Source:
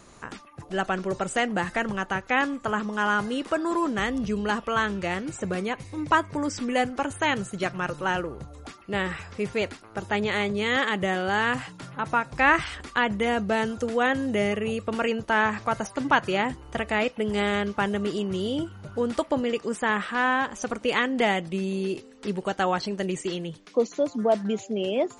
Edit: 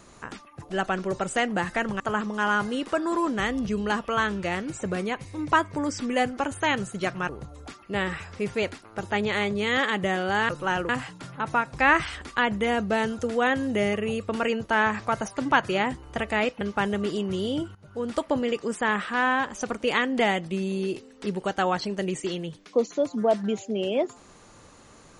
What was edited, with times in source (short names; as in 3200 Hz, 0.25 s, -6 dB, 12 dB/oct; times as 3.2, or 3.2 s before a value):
2–2.59 cut
7.88–8.28 move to 11.48
17.2–17.62 cut
18.76–19.26 fade in, from -16.5 dB